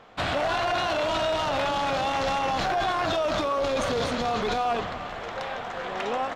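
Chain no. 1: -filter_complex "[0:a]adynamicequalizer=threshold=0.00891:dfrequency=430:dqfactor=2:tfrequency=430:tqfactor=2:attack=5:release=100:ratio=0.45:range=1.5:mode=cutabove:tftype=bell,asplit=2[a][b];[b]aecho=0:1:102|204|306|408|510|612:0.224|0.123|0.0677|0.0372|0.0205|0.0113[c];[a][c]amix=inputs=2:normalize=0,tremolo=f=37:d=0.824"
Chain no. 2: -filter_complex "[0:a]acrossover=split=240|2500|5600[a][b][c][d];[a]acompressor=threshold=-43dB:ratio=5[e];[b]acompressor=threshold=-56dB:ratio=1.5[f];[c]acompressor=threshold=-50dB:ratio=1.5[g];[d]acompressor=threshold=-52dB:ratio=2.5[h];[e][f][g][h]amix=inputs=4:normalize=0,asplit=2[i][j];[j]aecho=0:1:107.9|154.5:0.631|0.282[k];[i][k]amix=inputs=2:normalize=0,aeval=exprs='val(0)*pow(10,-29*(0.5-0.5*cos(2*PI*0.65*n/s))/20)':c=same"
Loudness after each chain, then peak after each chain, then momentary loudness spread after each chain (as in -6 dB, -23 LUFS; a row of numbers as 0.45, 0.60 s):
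-30.5, -38.5 LUFS; -17.0, -23.0 dBFS; 8, 21 LU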